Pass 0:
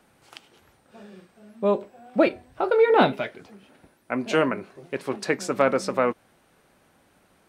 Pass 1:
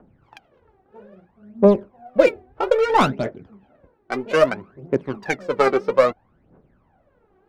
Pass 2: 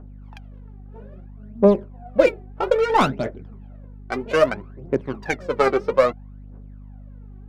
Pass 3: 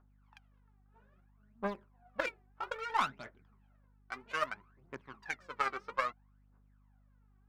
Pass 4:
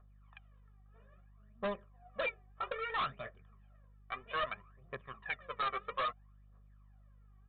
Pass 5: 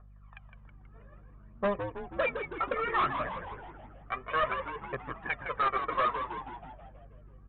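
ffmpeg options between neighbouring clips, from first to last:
ffmpeg -i in.wav -af "adynamicsmooth=sensitivity=1.5:basefreq=980,aphaser=in_gain=1:out_gain=1:delay=2.7:decay=0.75:speed=0.61:type=triangular,volume=1.5dB" out.wav
ffmpeg -i in.wav -af "aeval=exprs='val(0)+0.0126*(sin(2*PI*50*n/s)+sin(2*PI*2*50*n/s)/2+sin(2*PI*3*50*n/s)/3+sin(2*PI*4*50*n/s)/4+sin(2*PI*5*50*n/s)/5)':channel_layout=same,volume=-1dB" out.wav
ffmpeg -i in.wav -af "aeval=exprs='0.841*(cos(1*acos(clip(val(0)/0.841,-1,1)))-cos(1*PI/2))+0.15*(cos(3*acos(clip(val(0)/0.841,-1,1)))-cos(3*PI/2))':channel_layout=same,lowshelf=frequency=770:width_type=q:width=1.5:gain=-11.5,volume=-7.5dB" out.wav
ffmpeg -i in.wav -af "aecho=1:1:1.7:0.82,aresample=8000,volume=32dB,asoftclip=hard,volume=-32dB,aresample=44100,volume=1dB" out.wav
ffmpeg -i in.wav -filter_complex "[0:a]lowpass=2200,asplit=2[link_01][link_02];[link_02]asplit=8[link_03][link_04][link_05][link_06][link_07][link_08][link_09][link_10];[link_03]adelay=161,afreqshift=-90,volume=-7.5dB[link_11];[link_04]adelay=322,afreqshift=-180,volume=-12.1dB[link_12];[link_05]adelay=483,afreqshift=-270,volume=-16.7dB[link_13];[link_06]adelay=644,afreqshift=-360,volume=-21.2dB[link_14];[link_07]adelay=805,afreqshift=-450,volume=-25.8dB[link_15];[link_08]adelay=966,afreqshift=-540,volume=-30.4dB[link_16];[link_09]adelay=1127,afreqshift=-630,volume=-35dB[link_17];[link_10]adelay=1288,afreqshift=-720,volume=-39.6dB[link_18];[link_11][link_12][link_13][link_14][link_15][link_16][link_17][link_18]amix=inputs=8:normalize=0[link_19];[link_01][link_19]amix=inputs=2:normalize=0,volume=7.5dB" out.wav

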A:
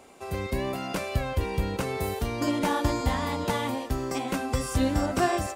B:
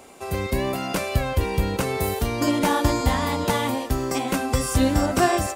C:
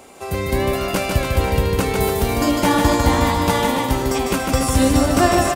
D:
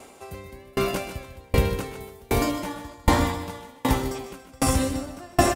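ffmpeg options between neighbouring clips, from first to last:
ffmpeg -i in.wav -af "highshelf=frequency=8000:gain=5.5,volume=5dB" out.wav
ffmpeg -i in.wav -af "aecho=1:1:150|285|406.5|515.8|614.3:0.631|0.398|0.251|0.158|0.1,volume=3dB" out.wav
ffmpeg -i in.wav -af "aecho=1:1:127:0.422,aeval=exprs='val(0)*pow(10,-34*if(lt(mod(1.3*n/s,1),2*abs(1.3)/1000),1-mod(1.3*n/s,1)/(2*abs(1.3)/1000),(mod(1.3*n/s,1)-2*abs(1.3)/1000)/(1-2*abs(1.3)/1000))/20)':channel_layout=same" out.wav

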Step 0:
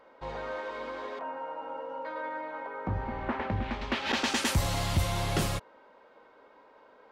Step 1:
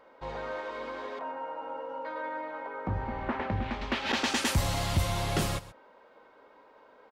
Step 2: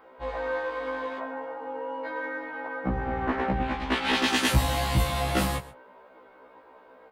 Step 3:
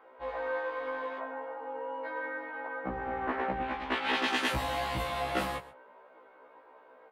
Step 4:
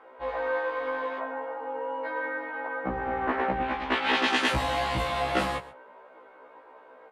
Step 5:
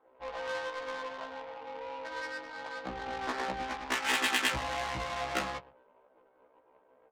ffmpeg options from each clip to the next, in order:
ffmpeg -i in.wav -af "aecho=1:1:129:0.141" out.wav
ffmpeg -i in.wav -filter_complex "[0:a]acrossover=split=6900[link_01][link_02];[link_01]adynamicsmooth=sensitivity=5:basefreq=4300[link_03];[link_03][link_02]amix=inputs=2:normalize=0,afftfilt=real='re*1.73*eq(mod(b,3),0)':imag='im*1.73*eq(mod(b,3),0)':win_size=2048:overlap=0.75,volume=7.5dB" out.wav
ffmpeg -i in.wav -af "bass=frequency=250:gain=-12,treble=frequency=4000:gain=-10,volume=-3dB" out.wav
ffmpeg -i in.wav -af "lowpass=9200,volume=5dB" out.wav
ffmpeg -i in.wav -af "adynamicsmooth=sensitivity=3:basefreq=510,tiltshelf=frequency=1500:gain=-6,volume=-4dB" out.wav

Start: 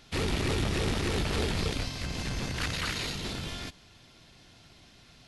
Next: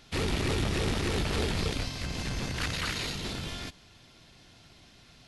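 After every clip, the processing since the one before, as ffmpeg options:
ffmpeg -i in.wav -af anull out.wav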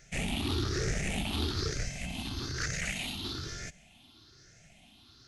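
ffmpeg -i in.wav -af "afftfilt=real='re*pow(10,15/40*sin(2*PI*(0.54*log(max(b,1)*sr/1024/100)/log(2)-(1.1)*(pts-256)/sr)))':imag='im*pow(10,15/40*sin(2*PI*(0.54*log(max(b,1)*sr/1024/100)/log(2)-(1.1)*(pts-256)/sr)))':win_size=1024:overlap=0.75,equalizer=frequency=500:width_type=o:width=0.33:gain=-7,equalizer=frequency=1000:width_type=o:width=0.33:gain=-8,equalizer=frequency=6300:width_type=o:width=0.33:gain=5,volume=-5dB" out.wav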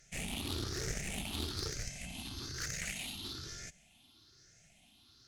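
ffmpeg -i in.wav -af "aeval=exprs='0.1*(cos(1*acos(clip(val(0)/0.1,-1,1)))-cos(1*PI/2))+0.0398*(cos(2*acos(clip(val(0)/0.1,-1,1)))-cos(2*PI/2))+0.00501*(cos(8*acos(clip(val(0)/0.1,-1,1)))-cos(8*PI/2))':channel_layout=same,aemphasis=mode=production:type=cd,volume=-8dB" out.wav

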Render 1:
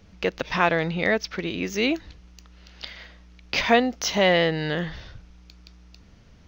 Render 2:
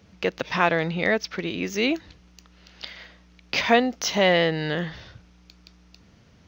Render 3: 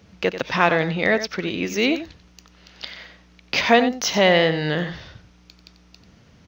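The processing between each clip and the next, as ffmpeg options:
ffmpeg -i in.wav -af "highpass=83" out.wav
ffmpeg -i in.wav -af "aecho=1:1:91:0.266,volume=3dB" out.wav

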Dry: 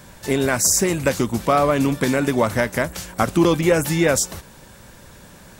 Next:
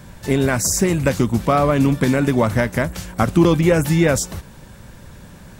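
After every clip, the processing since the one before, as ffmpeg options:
ffmpeg -i in.wav -af "bass=frequency=250:gain=7,treble=frequency=4000:gain=-3" out.wav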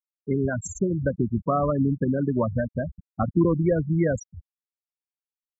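ffmpeg -i in.wav -af "afftfilt=real='re*gte(hypot(re,im),0.355)':imag='im*gte(hypot(re,im),0.355)':win_size=1024:overlap=0.75,volume=-6.5dB" out.wav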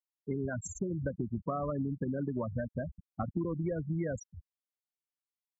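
ffmpeg -i in.wav -af "acompressor=threshold=-23dB:ratio=6,volume=-7dB" out.wav

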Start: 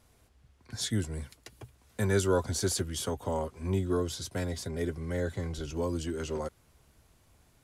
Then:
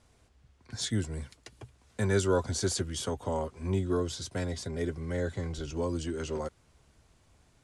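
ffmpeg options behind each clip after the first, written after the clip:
ffmpeg -i in.wav -af "lowpass=frequency=9300:width=0.5412,lowpass=frequency=9300:width=1.3066" out.wav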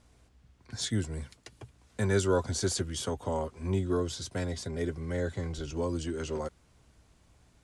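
ffmpeg -i in.wav -af "aeval=exprs='val(0)+0.000501*(sin(2*PI*60*n/s)+sin(2*PI*2*60*n/s)/2+sin(2*PI*3*60*n/s)/3+sin(2*PI*4*60*n/s)/4+sin(2*PI*5*60*n/s)/5)':channel_layout=same" out.wav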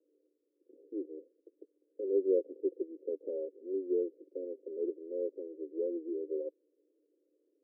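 ffmpeg -i in.wav -af "asuperpass=centerf=400:order=12:qfactor=1.6" out.wav

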